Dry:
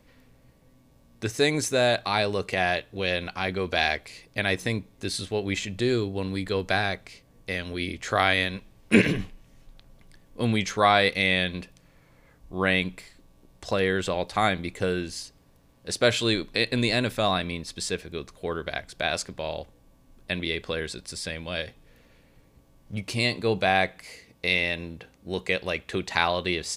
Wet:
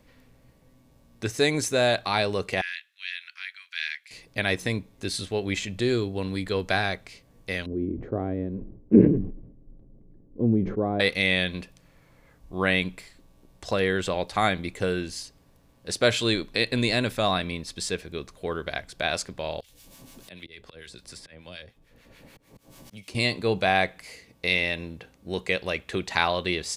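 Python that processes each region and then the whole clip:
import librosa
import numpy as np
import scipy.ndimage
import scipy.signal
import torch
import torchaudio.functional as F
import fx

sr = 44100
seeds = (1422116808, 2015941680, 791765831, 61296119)

y = fx.chain(x, sr, fx.steep_highpass(hz=1700.0, slope=36),
    fx.high_shelf(hz=2600.0, db=-10.0), at=(2.61, 4.11))
y = fx.chain(y, sr, fx.lowpass_res(hz=350.0, q=1.8),
    fx.sustainer(db_per_s=76.0), at=(7.66, 11.0))
y = fx.chain(y, sr, fx.auto_swell(attack_ms=393.0),
    fx.harmonic_tremolo(hz=6.8, depth_pct=70, crossover_hz=1000.0),
    fx.band_squash(depth_pct=100), at=(19.6, 23.15))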